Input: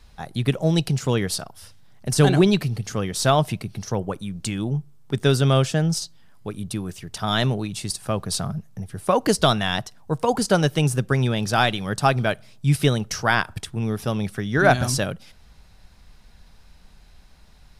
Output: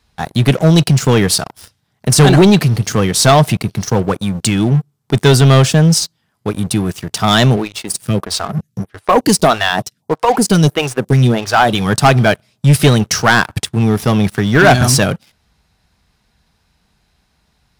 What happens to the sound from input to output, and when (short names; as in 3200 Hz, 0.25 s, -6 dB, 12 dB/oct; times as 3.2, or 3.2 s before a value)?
7.56–11.75 photocell phaser 1.6 Hz
whole clip: HPF 70 Hz 12 dB/oct; notch 560 Hz, Q 12; sample leveller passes 3; gain +2 dB